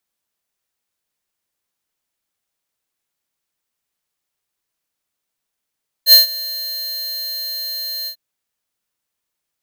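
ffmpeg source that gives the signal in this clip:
ffmpeg -f lavfi -i "aevalsrc='0.562*(2*lt(mod(4170*t,1),0.5)-1)':duration=2.096:sample_rate=44100,afade=type=in:duration=0.068,afade=type=out:start_time=0.068:duration=0.134:silence=0.0944,afade=type=out:start_time=2.01:duration=0.086" out.wav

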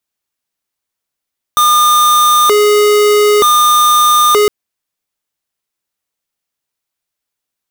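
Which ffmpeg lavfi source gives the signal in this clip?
ffmpeg -f lavfi -i "aevalsrc='0.376*(2*lt(mod((813.5*t+396.5/0.54*(0.5-abs(mod(0.54*t,1)-0.5))),1),0.5)-1)':duration=2.91:sample_rate=44100" out.wav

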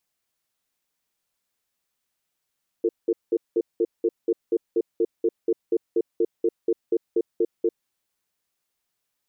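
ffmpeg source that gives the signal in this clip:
ffmpeg -f lavfi -i "aevalsrc='0.0944*(sin(2*PI*348*t)+sin(2*PI*452*t))*clip(min(mod(t,0.24),0.05-mod(t,0.24))/0.005,0,1)':duration=4.98:sample_rate=44100" out.wav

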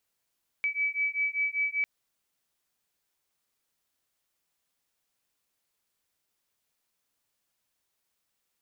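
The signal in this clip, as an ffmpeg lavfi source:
ffmpeg -f lavfi -i "aevalsrc='0.0335*(sin(2*PI*2290*t)+sin(2*PI*2295.1*t))':duration=1.2:sample_rate=44100" out.wav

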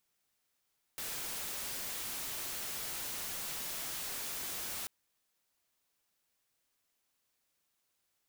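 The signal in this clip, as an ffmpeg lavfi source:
ffmpeg -f lavfi -i "anoisesrc=color=white:amplitude=0.0173:duration=3.89:sample_rate=44100:seed=1" out.wav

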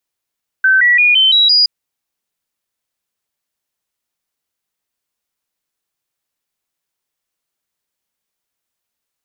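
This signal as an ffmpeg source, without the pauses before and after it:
ffmpeg -f lavfi -i "aevalsrc='0.447*clip(min(mod(t,0.17),0.17-mod(t,0.17))/0.005,0,1)*sin(2*PI*1540*pow(2,floor(t/0.17)/3)*mod(t,0.17))':duration=1.02:sample_rate=44100" out.wav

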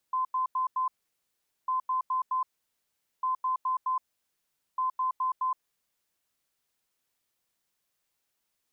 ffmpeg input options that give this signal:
ffmpeg -f lavfi -i "aevalsrc='0.0562*sin(2*PI*1030*t)*clip(min(mod(mod(t,1.55),0.21),0.12-mod(mod(t,1.55),0.21))/0.005,0,1)*lt(mod(t,1.55),0.84)':duration=6.2:sample_rate=44100" out.wav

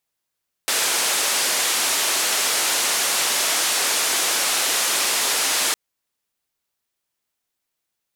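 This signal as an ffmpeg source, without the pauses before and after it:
ffmpeg -f lavfi -i "anoisesrc=color=white:duration=5.06:sample_rate=44100:seed=1,highpass=frequency=380,lowpass=frequency=10000,volume=-12.6dB" out.wav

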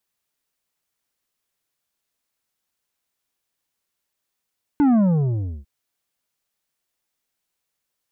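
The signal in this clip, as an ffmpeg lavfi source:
ffmpeg -f lavfi -i "aevalsrc='0.2*clip((0.85-t)/0.7,0,1)*tanh(2.51*sin(2*PI*300*0.85/log(65/300)*(exp(log(65/300)*t/0.85)-1)))/tanh(2.51)':duration=0.85:sample_rate=44100" out.wav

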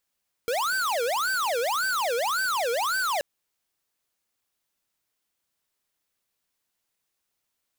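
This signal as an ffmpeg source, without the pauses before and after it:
ffmpeg -f lavfi -i "aevalsrc='0.0501*(2*lt(mod((1006*t-544/(2*PI*1.8)*sin(2*PI*1.8*t)),1),0.5)-1)':duration=2.73:sample_rate=44100" out.wav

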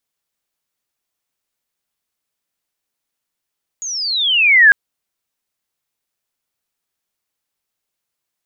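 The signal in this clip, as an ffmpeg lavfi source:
ffmpeg -f lavfi -i "aevalsrc='pow(10,(-22.5+19*t/0.9)/20)*sin(2*PI*6800*0.9/log(1600/6800)*(exp(log(1600/6800)*t/0.9)-1))':duration=0.9:sample_rate=44100" out.wav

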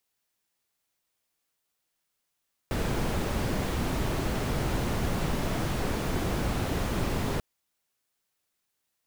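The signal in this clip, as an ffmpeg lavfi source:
ffmpeg -f lavfi -i "anoisesrc=color=brown:amplitude=0.186:duration=4.69:sample_rate=44100:seed=1" out.wav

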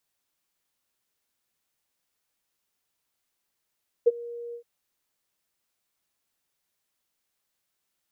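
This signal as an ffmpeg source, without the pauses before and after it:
ffmpeg -f lavfi -i "aevalsrc='0.251*sin(2*PI*473*t)':duration=0.57:sample_rate=44100,afade=type=in:duration=0.016,afade=type=out:start_time=0.016:duration=0.029:silence=0.075,afade=type=out:start_time=0.48:duration=0.09" out.wav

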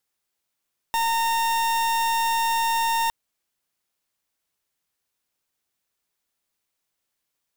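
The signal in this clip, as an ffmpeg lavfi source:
ffmpeg -f lavfi -i "aevalsrc='0.075*(2*lt(mod(916*t,1),0.41)-1)':duration=2.16:sample_rate=44100" out.wav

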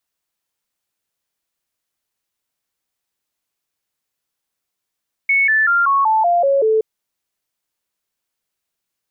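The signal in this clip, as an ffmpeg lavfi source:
ffmpeg -f lavfi -i "aevalsrc='0.266*clip(min(mod(t,0.19),0.19-mod(t,0.19))/0.005,0,1)*sin(2*PI*2210*pow(2,-floor(t/0.19)/3)*mod(t,0.19))':duration=1.52:sample_rate=44100" out.wav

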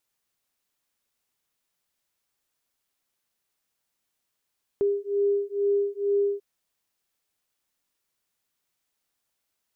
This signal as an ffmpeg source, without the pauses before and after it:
ffmpeg -f lavfi -i "aevalsrc='0.0562*(sin(2*PI*402*t)+sin(2*PI*404.2*t))':duration=1.59:sample_rate=44100" out.wav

